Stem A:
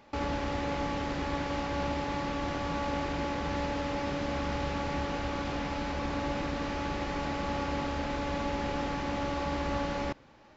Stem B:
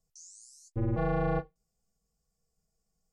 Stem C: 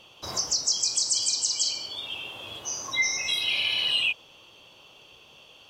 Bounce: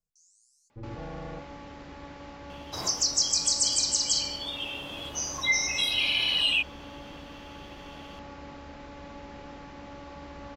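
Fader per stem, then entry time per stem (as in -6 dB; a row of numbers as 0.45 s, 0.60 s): -11.5 dB, -11.5 dB, 0.0 dB; 0.70 s, 0.00 s, 2.50 s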